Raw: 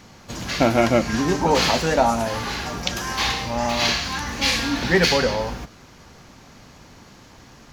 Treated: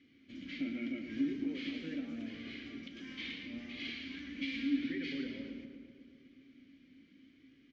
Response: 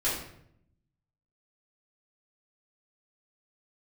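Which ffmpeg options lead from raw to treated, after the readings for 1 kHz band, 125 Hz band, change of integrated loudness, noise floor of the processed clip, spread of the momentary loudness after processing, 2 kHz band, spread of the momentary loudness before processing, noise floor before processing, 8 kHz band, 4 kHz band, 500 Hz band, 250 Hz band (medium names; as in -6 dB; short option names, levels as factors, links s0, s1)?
under -40 dB, -27.0 dB, -19.0 dB, -65 dBFS, 19 LU, -20.0 dB, 9 LU, -48 dBFS, under -35 dB, -22.5 dB, -29.0 dB, -12.0 dB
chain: -filter_complex "[0:a]lowpass=4800,alimiter=limit=0.211:level=0:latency=1:release=148,asplit=3[s0][s1][s2];[s0]bandpass=f=270:t=q:w=8,volume=1[s3];[s1]bandpass=f=2290:t=q:w=8,volume=0.501[s4];[s2]bandpass=f=3010:t=q:w=8,volume=0.355[s5];[s3][s4][s5]amix=inputs=3:normalize=0,lowshelf=f=90:g=8.5,bandreject=f=60:t=h:w=6,bandreject=f=120:t=h:w=6,bandreject=f=180:t=h:w=6,bandreject=f=240:t=h:w=6,asplit=2[s6][s7];[s7]aecho=0:1:114:0.335[s8];[s6][s8]amix=inputs=2:normalize=0,flanger=delay=2.4:depth=1.5:regen=-53:speed=0.79:shape=sinusoidal,asplit=2[s9][s10];[s10]adelay=251,lowpass=f=1300:p=1,volume=0.398,asplit=2[s11][s12];[s12]adelay=251,lowpass=f=1300:p=1,volume=0.51,asplit=2[s13][s14];[s14]adelay=251,lowpass=f=1300:p=1,volume=0.51,asplit=2[s15][s16];[s16]adelay=251,lowpass=f=1300:p=1,volume=0.51,asplit=2[s17][s18];[s18]adelay=251,lowpass=f=1300:p=1,volume=0.51,asplit=2[s19][s20];[s20]adelay=251,lowpass=f=1300:p=1,volume=0.51[s21];[s11][s13][s15][s17][s19][s21]amix=inputs=6:normalize=0[s22];[s9][s22]amix=inputs=2:normalize=0,volume=0.841"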